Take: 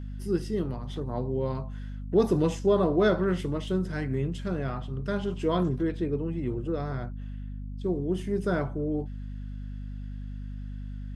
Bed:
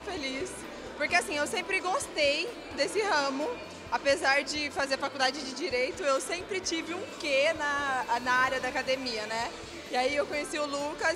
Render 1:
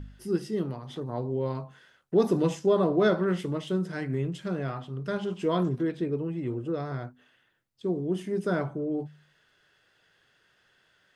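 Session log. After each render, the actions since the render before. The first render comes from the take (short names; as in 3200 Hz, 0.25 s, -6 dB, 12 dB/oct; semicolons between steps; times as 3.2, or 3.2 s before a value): de-hum 50 Hz, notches 5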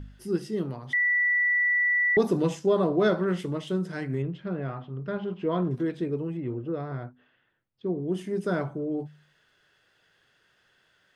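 0.93–2.17 bleep 1960 Hz -20.5 dBFS; 4.22–5.71 air absorption 320 m; 6.37–8.08 air absorption 260 m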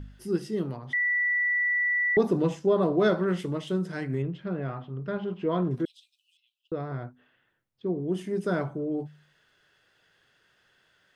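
0.77–2.82 high shelf 3400 Hz -8 dB; 5.85–6.72 steep high-pass 2900 Hz 72 dB/oct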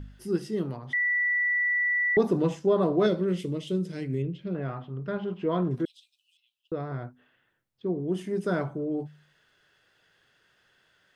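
3.06–4.55 band shelf 1100 Hz -11.5 dB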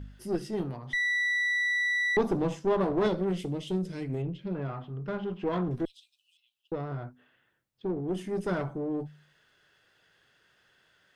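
one diode to ground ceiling -27.5 dBFS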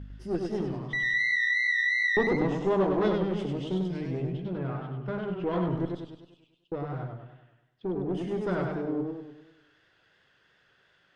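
air absorption 100 m; warbling echo 99 ms, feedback 51%, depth 107 cents, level -4 dB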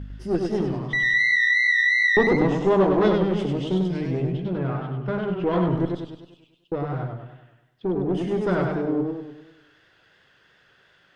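gain +6.5 dB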